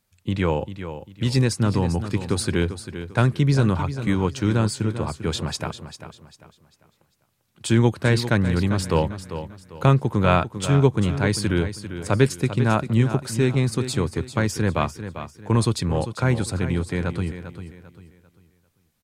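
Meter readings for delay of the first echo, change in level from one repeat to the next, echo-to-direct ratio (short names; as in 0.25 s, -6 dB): 0.396 s, -9.5 dB, -10.5 dB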